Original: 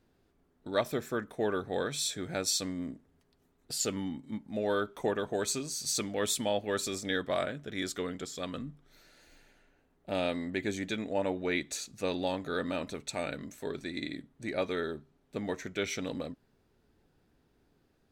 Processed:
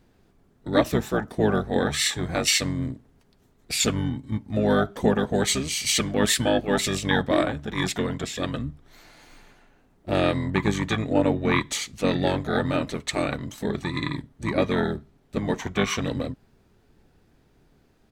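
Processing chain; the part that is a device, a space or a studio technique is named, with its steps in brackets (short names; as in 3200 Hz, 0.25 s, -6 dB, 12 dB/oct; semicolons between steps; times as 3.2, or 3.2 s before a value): octave pedal (harmoniser -12 st -1 dB); gain +7 dB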